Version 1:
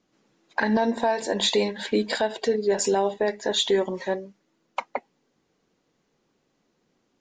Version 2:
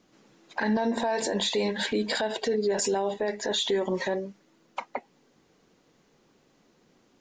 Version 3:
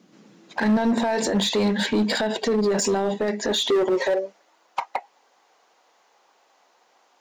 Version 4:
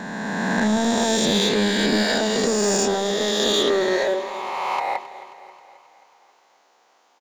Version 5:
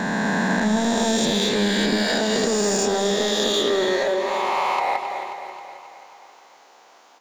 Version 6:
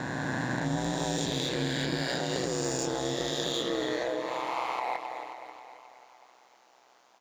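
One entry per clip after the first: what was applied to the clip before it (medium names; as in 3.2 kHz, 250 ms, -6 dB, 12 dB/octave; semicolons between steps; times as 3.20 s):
in parallel at +2 dB: compression, threshold -32 dBFS, peak gain reduction 14 dB; on the sum: peak limiter -18.5 dBFS, peak gain reduction 10 dB
high-pass sweep 180 Hz -> 790 Hz, 3.30–4.51 s; in parallel at -4 dB: wavefolder -22.5 dBFS
reverse spectral sustain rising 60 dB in 2.63 s; feedback delay 267 ms, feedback 58%, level -15.5 dB; trim -2.5 dB
compression 6:1, threshold -27 dBFS, peak gain reduction 10.5 dB; reverberation, pre-delay 150 ms, DRR 10 dB; trim +8 dB
ring modulator 63 Hz; trim -7 dB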